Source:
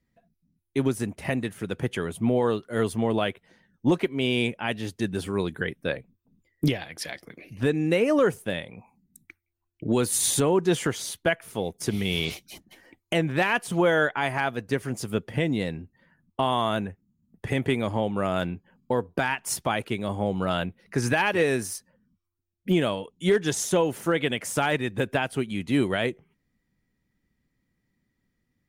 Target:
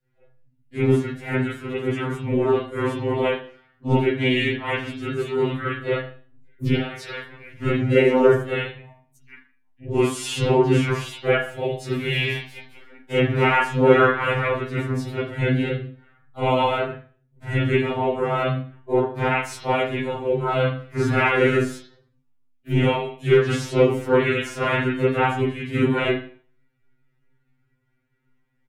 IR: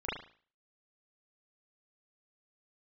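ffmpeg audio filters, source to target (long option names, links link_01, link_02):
-filter_complex "[0:a]bandreject=frequency=222.4:width_type=h:width=4,bandreject=frequency=444.8:width_type=h:width=4,bandreject=frequency=667.2:width_type=h:width=4,bandreject=frequency=889.6:width_type=h:width=4,acrossover=split=9400[link_01][link_02];[link_02]acompressor=threshold=-44dB:ratio=4:attack=1:release=60[link_03];[link_01][link_03]amix=inputs=2:normalize=0,asplit=4[link_04][link_05][link_06][link_07];[link_05]asetrate=33038,aresample=44100,atempo=1.33484,volume=-2dB[link_08];[link_06]asetrate=37084,aresample=44100,atempo=1.18921,volume=-3dB[link_09];[link_07]asetrate=52444,aresample=44100,atempo=0.840896,volume=-10dB[link_10];[link_04][link_08][link_09][link_10]amix=inputs=4:normalize=0[link_11];[1:a]atrim=start_sample=2205[link_12];[link_11][link_12]afir=irnorm=-1:irlink=0,afftfilt=real='re*2.45*eq(mod(b,6),0)':imag='im*2.45*eq(mod(b,6),0)':win_size=2048:overlap=0.75,volume=-2dB"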